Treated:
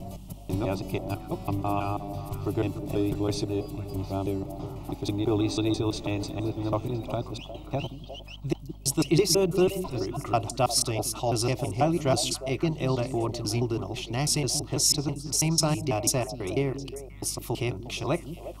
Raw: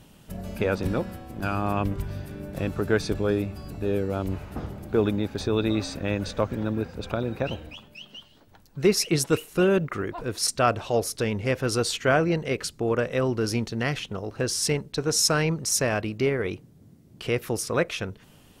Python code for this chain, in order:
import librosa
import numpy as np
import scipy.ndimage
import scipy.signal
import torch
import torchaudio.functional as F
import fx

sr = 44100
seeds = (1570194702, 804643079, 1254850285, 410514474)

y = fx.block_reorder(x, sr, ms=164.0, group=3)
y = fx.fixed_phaser(y, sr, hz=320.0, stages=8)
y = fx.add_hum(y, sr, base_hz=50, snr_db=16)
y = fx.echo_stepped(y, sr, ms=178, hz=210.0, octaves=1.4, feedback_pct=70, wet_db=-6)
y = y * 10.0 ** (1.5 / 20.0)